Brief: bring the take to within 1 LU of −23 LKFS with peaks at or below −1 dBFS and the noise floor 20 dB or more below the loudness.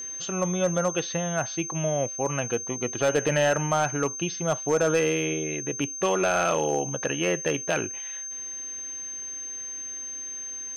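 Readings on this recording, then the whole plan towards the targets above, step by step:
share of clipped samples 0.5%; peaks flattened at −15.5 dBFS; interfering tone 6,300 Hz; level of the tone −33 dBFS; integrated loudness −27.0 LKFS; sample peak −15.5 dBFS; target loudness −23.0 LKFS
→ clipped peaks rebuilt −15.5 dBFS
notch filter 6,300 Hz, Q 30
level +4 dB

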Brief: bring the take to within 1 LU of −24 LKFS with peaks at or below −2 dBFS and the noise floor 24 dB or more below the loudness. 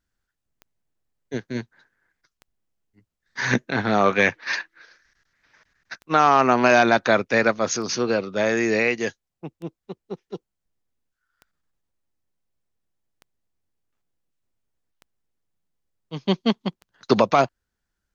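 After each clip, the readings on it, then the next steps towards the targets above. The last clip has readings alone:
number of clicks 10; integrated loudness −21.0 LKFS; sample peak −3.5 dBFS; target loudness −24.0 LKFS
→ click removal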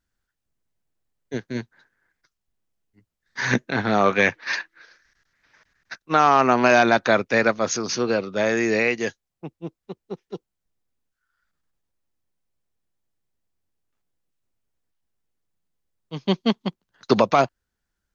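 number of clicks 0; integrated loudness −21.0 LKFS; sample peak −3.5 dBFS; target loudness −24.0 LKFS
→ level −3 dB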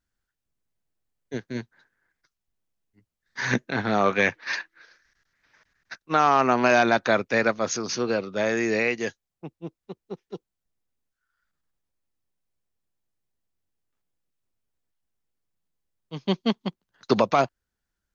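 integrated loudness −24.0 LKFS; sample peak −6.5 dBFS; background noise floor −85 dBFS

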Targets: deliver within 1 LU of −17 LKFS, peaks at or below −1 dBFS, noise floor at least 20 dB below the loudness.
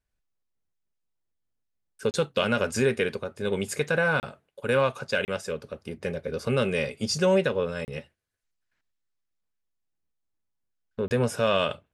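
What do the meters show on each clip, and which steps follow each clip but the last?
number of dropouts 5; longest dropout 29 ms; integrated loudness −27.0 LKFS; sample peak −11.5 dBFS; target loudness −17.0 LKFS
→ repair the gap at 0:02.11/0:04.20/0:05.25/0:07.85/0:11.08, 29 ms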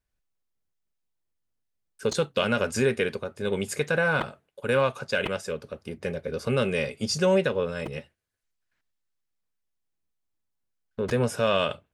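number of dropouts 0; integrated loudness −27.0 LKFS; sample peak −11.5 dBFS; target loudness −17.0 LKFS
→ level +10 dB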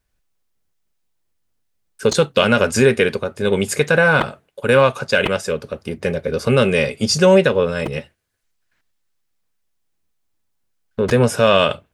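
integrated loudness −17.0 LKFS; sample peak −1.5 dBFS; background noise floor −69 dBFS

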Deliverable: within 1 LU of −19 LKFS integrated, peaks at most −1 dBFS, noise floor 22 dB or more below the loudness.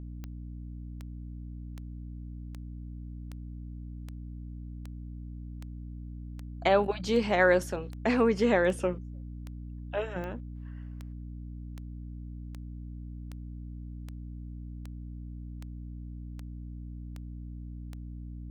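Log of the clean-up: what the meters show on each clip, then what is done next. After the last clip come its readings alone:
number of clicks 24; mains hum 60 Hz; hum harmonics up to 300 Hz; level of the hum −38 dBFS; integrated loudness −34.5 LKFS; sample peak −10.5 dBFS; target loudness −19.0 LKFS
→ click removal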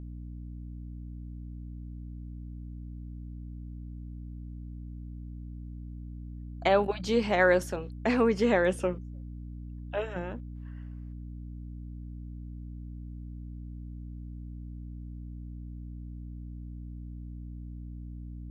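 number of clicks 0; mains hum 60 Hz; hum harmonics up to 300 Hz; level of the hum −38 dBFS
→ hum removal 60 Hz, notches 5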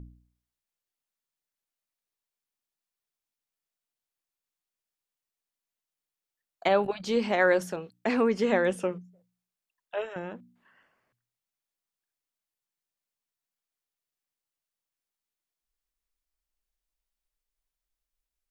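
mains hum none found; integrated loudness −27.5 LKFS; sample peak −10.5 dBFS; target loudness −19.0 LKFS
→ level +8.5 dB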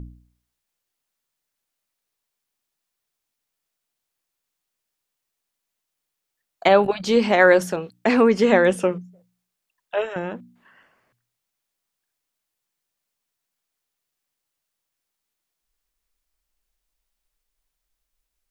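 integrated loudness −19.0 LKFS; sample peak −2.0 dBFS; background noise floor −82 dBFS

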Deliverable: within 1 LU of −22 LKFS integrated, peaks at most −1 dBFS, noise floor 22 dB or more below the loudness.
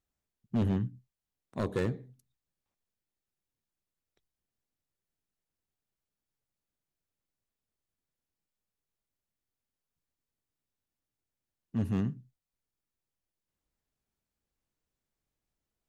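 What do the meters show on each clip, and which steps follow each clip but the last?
share of clipped samples 0.5%; peaks flattened at −23.5 dBFS; integrated loudness −33.5 LKFS; sample peak −23.5 dBFS; target loudness −22.0 LKFS
→ clipped peaks rebuilt −23.5 dBFS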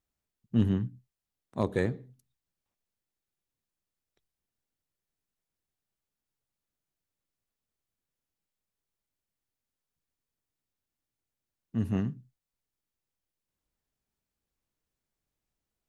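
share of clipped samples 0.0%; integrated loudness −31.5 LKFS; sample peak −14.5 dBFS; target loudness −22.0 LKFS
→ level +9.5 dB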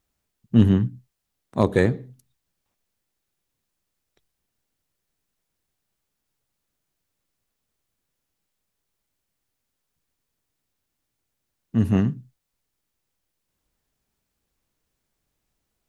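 integrated loudness −22.0 LKFS; sample peak −5.0 dBFS; background noise floor −80 dBFS

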